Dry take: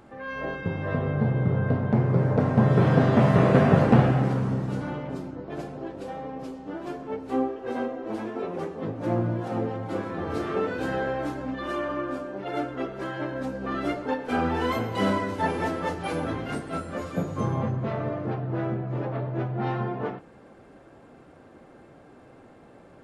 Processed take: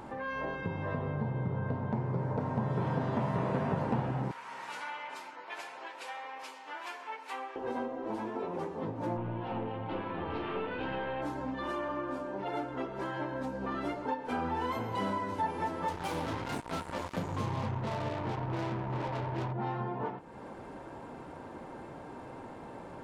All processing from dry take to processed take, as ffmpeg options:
-filter_complex "[0:a]asettb=1/sr,asplit=3[s0][s1][s2];[s0]atrim=end=4.314[s3];[s1]atrim=start=4.31:end=7.56,asetpts=PTS-STARTPTS,afade=t=in:d=0.004:c=qsin,afade=t=out:st=3.246:d=0.004:c=qsin,highpass=1400,equalizer=f=2300:w=1.8:g=6[s4];[s2]atrim=start=7.556[s5];[s3][s4]acrossfade=d=0.004:c1=hsin:c2=qsin[s6];[s6][s5]acrossfade=d=0.004:c1=qsin:c2=hsin,asettb=1/sr,asplit=3[s7][s8][s9];[s7]atrim=end=9.174[s10];[s8]atrim=start=9.17:end=11.22,asetpts=PTS-STARTPTS,afade=t=in:d=0.004:c=qsin,afade=t=out:st=2.046:d=0.004:c=qsin,equalizer=f=2800:w=2.4:g=10,aeval=exprs='(tanh(10*val(0)+0.45)-tanh(0.45))/10':c=same,lowpass=f=3800:w=0.5412,lowpass=f=3800:w=1.3066[s11];[s9]atrim=start=11.216[s12];[s10][s11]acrossfade=d=0.004:c1=hsin:c2=qsin[s13];[s13][s12]acrossfade=d=0.004:c1=qsin:c2=hsin,asettb=1/sr,asplit=3[s14][s15][s16];[s14]atrim=end=15.884[s17];[s15]atrim=start=15.88:end=19.53,asetpts=PTS-STARTPTS,afade=t=in:d=0.004:c=qsin,afade=t=out:st=3.646:d=0.004:c=qsin,equalizer=f=95:t=o:w=0.28:g=7.5,acrusher=bits=4:mix=0:aa=0.5[s18];[s16]atrim=start=19.526[s19];[s17][s18]acrossfade=d=0.004:c1=hsin:c2=qsin[s20];[s20][s19]acrossfade=d=0.004:c1=qsin:c2=hsin,equalizer=f=930:w=7.3:g=13.5,acompressor=threshold=0.00708:ratio=2.5,volume=1.68"

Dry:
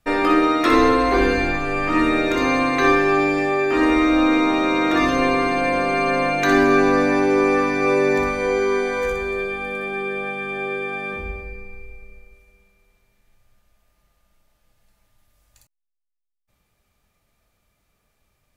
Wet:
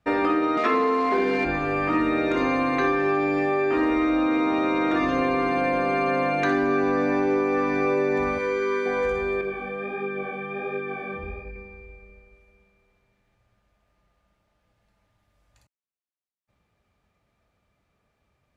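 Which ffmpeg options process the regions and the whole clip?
-filter_complex "[0:a]asettb=1/sr,asplit=3[s0][s1][s2];[s0]atrim=end=0.574[s3];[s1]atrim=start=0.57:end=1.45,asetpts=PTS-STARTPTS,afade=t=in:d=0.004:c=qsin,afade=t=out:st=0.876:d=0.004:c=qsin,aecho=1:1:4.7:0.96,atrim=end_sample=38808,acrusher=bits=5:dc=4:mix=0:aa=0.000001,highpass=170,lowpass=5000[s4];[s2]atrim=start=1.446[s5];[s3][s4]acrossfade=d=0.004:c1=hsin:c2=qsin[s6];[s6][s5]acrossfade=d=0.004:c1=qsin:c2=hsin,asettb=1/sr,asplit=3[s7][s8][s9];[s7]atrim=end=8.384[s10];[s8]atrim=start=8.38:end=8.86,asetpts=PTS-STARTPTS,afade=t=in:d=0.004:c=qsin,afade=t=out:st=0.476:d=0.004:c=qsin,asuperstop=centerf=710:order=4:qfactor=2.4,lowshelf=f=460:g=-8[s11];[s9]atrim=start=8.856[s12];[s10][s11]acrossfade=d=0.004:c1=hsin:c2=qsin[s13];[s13][s12]acrossfade=d=0.004:c1=qsin:c2=hsin,asettb=1/sr,asplit=3[s14][s15][s16];[s14]atrim=end=9.414[s17];[s15]atrim=start=9.41:end=11.56,asetpts=PTS-STARTPTS,afade=t=in:d=0.004:c=qsin,afade=t=out:st=2.146:d=0.004:c=qsin,acrossover=split=2600[s18][s19];[s19]acompressor=threshold=0.01:ratio=4:attack=1:release=60[s20];[s18][s20]amix=inputs=2:normalize=0,asoftclip=type=hard:threshold=0.126,flanger=delay=19.5:depth=6.9:speed=1.4[s21];[s16]atrim=start=11.556[s22];[s17][s21]acrossfade=d=0.004:c1=hsin:c2=qsin[s23];[s23][s22]acrossfade=d=0.004:c1=qsin:c2=hsin,highpass=54,aemphasis=mode=reproduction:type=75fm,acompressor=threshold=0.126:ratio=6,volume=0.891"

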